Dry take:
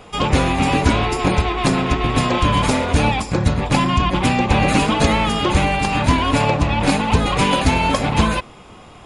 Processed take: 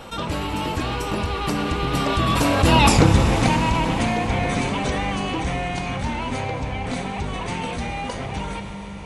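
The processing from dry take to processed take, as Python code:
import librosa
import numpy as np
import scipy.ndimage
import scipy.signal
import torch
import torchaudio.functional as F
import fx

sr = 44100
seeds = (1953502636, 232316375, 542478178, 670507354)

y = fx.doppler_pass(x, sr, speed_mps=36, closest_m=2.6, pass_at_s=2.92)
y = fx.rev_schroeder(y, sr, rt60_s=3.2, comb_ms=31, drr_db=9.0)
y = fx.env_flatten(y, sr, amount_pct=50)
y = F.gain(torch.from_numpy(y), 8.5).numpy()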